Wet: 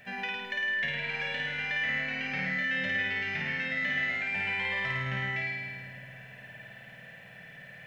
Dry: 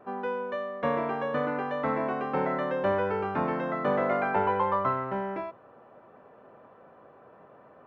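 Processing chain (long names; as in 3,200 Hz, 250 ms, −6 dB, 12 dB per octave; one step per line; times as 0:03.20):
drawn EQ curve 180 Hz 0 dB, 340 Hz −23 dB, 660 Hz −10 dB, 1,200 Hz −23 dB, 1,800 Hz +14 dB
downward compressor, threshold −39 dBFS, peak gain reduction 14.5 dB
flutter between parallel walls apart 9.2 metres, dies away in 1.5 s
convolution reverb RT60 5.3 s, pre-delay 80 ms, DRR 14.5 dB
level +5 dB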